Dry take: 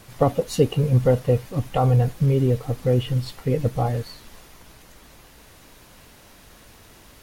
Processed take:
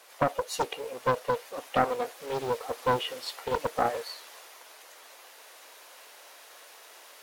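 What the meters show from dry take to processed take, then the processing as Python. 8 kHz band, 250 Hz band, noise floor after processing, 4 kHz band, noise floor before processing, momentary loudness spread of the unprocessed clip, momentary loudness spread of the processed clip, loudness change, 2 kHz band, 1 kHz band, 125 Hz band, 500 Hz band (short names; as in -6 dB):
-2.0 dB, -14.0 dB, -52 dBFS, 0.0 dB, -50 dBFS, 7 LU, 21 LU, -9.0 dB, +4.5 dB, +1.0 dB, -23.5 dB, -7.5 dB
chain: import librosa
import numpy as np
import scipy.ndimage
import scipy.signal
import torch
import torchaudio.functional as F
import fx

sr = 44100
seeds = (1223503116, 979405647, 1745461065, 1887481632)

y = scipy.signal.sosfilt(scipy.signal.butter(4, 490.0, 'highpass', fs=sr, output='sos'), x)
y = fx.rider(y, sr, range_db=10, speed_s=2.0)
y = fx.doppler_dist(y, sr, depth_ms=0.75)
y = y * librosa.db_to_amplitude(-1.0)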